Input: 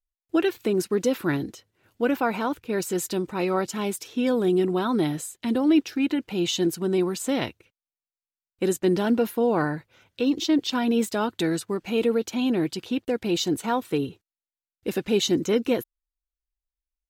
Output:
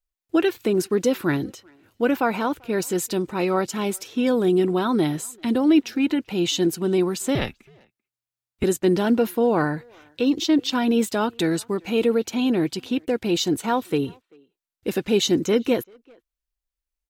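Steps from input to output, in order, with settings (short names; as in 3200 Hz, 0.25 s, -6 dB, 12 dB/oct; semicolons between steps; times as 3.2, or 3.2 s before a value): speakerphone echo 0.39 s, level -27 dB; 7.35–8.64 frequency shift -120 Hz; gain +2.5 dB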